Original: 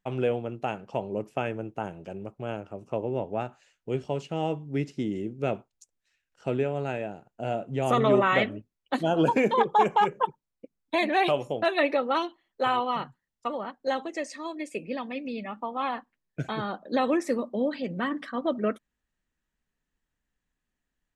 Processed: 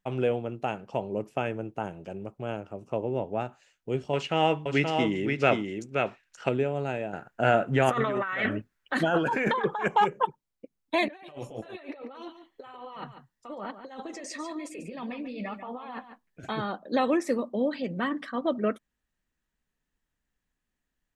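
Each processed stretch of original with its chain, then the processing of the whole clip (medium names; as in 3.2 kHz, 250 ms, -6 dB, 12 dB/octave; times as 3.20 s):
4.13–6.49 s: peaking EQ 1.9 kHz +14 dB 2.6 oct + delay 526 ms -4.5 dB
7.13–9.88 s: peaking EQ 1.6 kHz +15 dB 0.91 oct + compressor with a negative ratio -26 dBFS
11.08–16.46 s: compressor with a negative ratio -37 dBFS + flange 1.1 Hz, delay 1.2 ms, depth 9.2 ms, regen -46% + delay 143 ms -10.5 dB
whole clip: none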